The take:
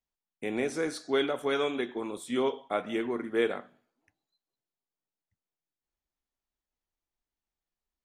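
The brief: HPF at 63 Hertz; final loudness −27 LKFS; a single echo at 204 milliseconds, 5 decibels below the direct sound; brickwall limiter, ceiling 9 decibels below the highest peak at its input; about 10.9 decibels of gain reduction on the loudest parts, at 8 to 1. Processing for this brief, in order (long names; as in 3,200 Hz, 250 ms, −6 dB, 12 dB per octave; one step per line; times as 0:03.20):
high-pass filter 63 Hz
downward compressor 8 to 1, threshold −33 dBFS
brickwall limiter −31 dBFS
single-tap delay 204 ms −5 dB
level +13 dB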